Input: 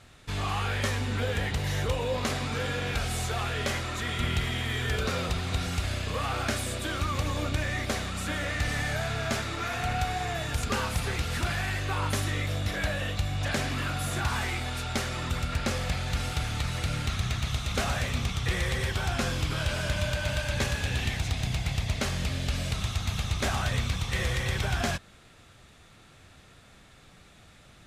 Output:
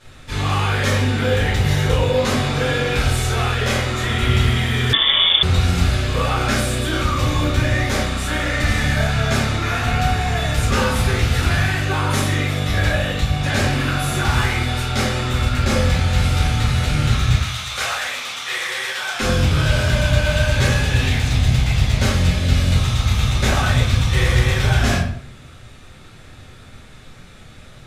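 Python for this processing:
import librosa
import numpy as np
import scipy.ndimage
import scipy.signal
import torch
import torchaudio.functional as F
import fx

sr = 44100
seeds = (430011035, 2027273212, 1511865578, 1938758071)

y = fx.highpass(x, sr, hz=900.0, slope=12, at=(17.34, 19.2))
y = fx.room_shoebox(y, sr, seeds[0], volume_m3=91.0, walls='mixed', distance_m=2.4)
y = fx.freq_invert(y, sr, carrier_hz=3500, at=(4.93, 5.43))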